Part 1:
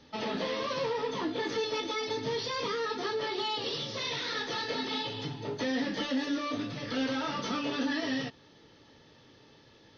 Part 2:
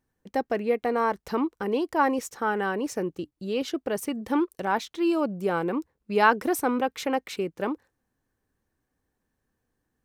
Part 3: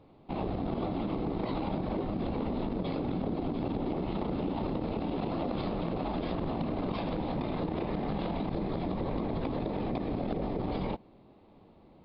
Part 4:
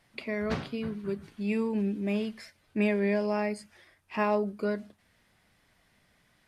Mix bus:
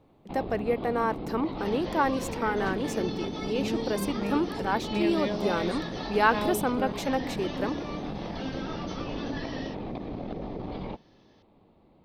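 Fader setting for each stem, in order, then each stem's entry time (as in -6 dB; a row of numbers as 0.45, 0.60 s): -6.5, -2.5, -3.0, -4.5 dB; 1.45, 0.00, 0.00, 2.15 s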